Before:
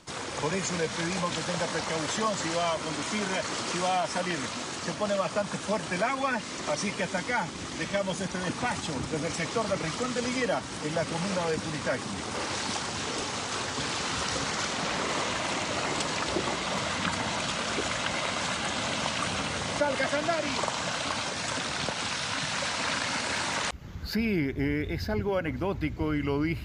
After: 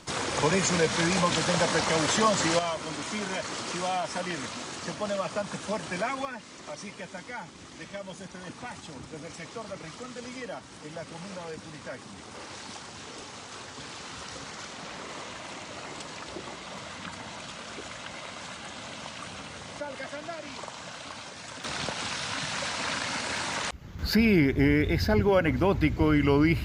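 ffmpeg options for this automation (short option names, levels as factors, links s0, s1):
-af "asetnsamples=n=441:p=0,asendcmd='2.59 volume volume -2.5dB;6.25 volume volume -10dB;21.64 volume volume -1.5dB;23.99 volume volume 6dB',volume=1.78"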